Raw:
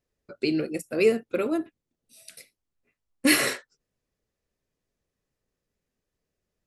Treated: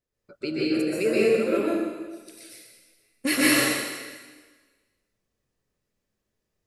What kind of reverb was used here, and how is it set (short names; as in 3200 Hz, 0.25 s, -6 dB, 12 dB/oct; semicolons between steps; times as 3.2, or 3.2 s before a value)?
plate-style reverb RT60 1.4 s, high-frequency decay 1×, pre-delay 0.115 s, DRR -7.5 dB; gain -5.5 dB